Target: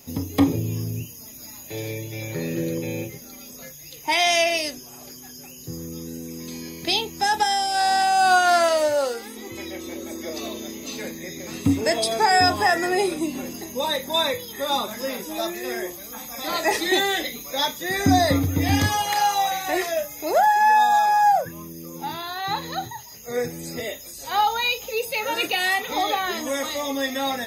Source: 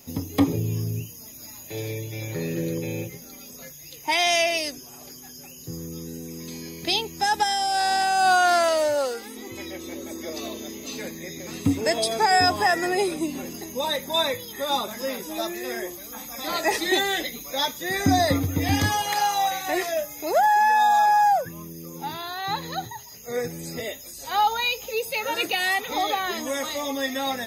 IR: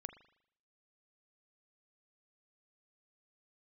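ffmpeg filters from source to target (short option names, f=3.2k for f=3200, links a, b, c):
-filter_complex "[1:a]atrim=start_sample=2205,atrim=end_sample=3087,asetrate=52920,aresample=44100[a];[0:a][a]afir=irnorm=-1:irlink=0,volume=8dB"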